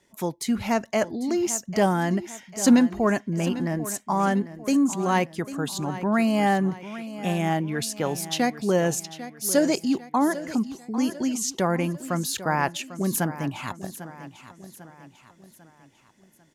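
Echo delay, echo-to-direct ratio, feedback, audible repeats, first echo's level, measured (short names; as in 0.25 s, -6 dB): 0.797 s, -13.0 dB, 46%, 4, -14.0 dB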